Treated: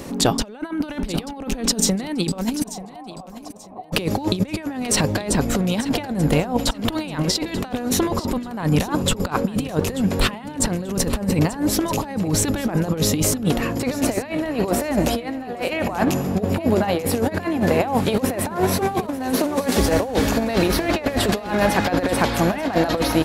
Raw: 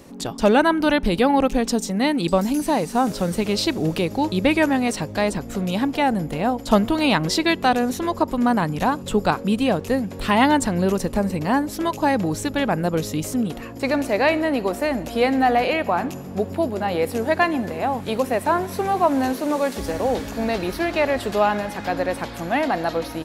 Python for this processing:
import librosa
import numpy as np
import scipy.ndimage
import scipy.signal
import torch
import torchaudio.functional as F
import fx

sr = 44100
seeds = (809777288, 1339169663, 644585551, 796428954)

y = fx.over_compress(x, sr, threshold_db=-26.0, ratio=-0.5)
y = fx.formant_cascade(y, sr, vowel='a', at=(2.62, 3.92), fade=0.02)
y = fx.echo_feedback(y, sr, ms=886, feedback_pct=29, wet_db=-15)
y = y * librosa.db_to_amplitude(5.5)